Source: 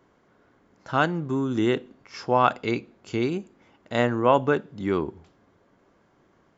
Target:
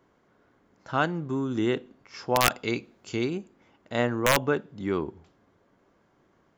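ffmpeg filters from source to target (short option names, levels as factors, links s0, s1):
-filter_complex "[0:a]aeval=exprs='(mod(2.51*val(0)+1,2)-1)/2.51':c=same,asettb=1/sr,asplit=3[s0][s1][s2];[s0]atrim=end=2.464[s3];[s1]atrim=start=2.46:end=3.25,asetpts=PTS-STARTPTS,afade=t=in:d=0.004:c=qsin,afade=t=out:st=0.786:d=0.004:c=qsin,highshelf=f=3500:g=8[s4];[s2]atrim=start=3.246[s5];[s3][s4]acrossfade=d=0.004:c1=hsin:c2=qsin[s6];[s6][s5]acrossfade=d=0.004:c1=qsin:c2=hsin,volume=0.708"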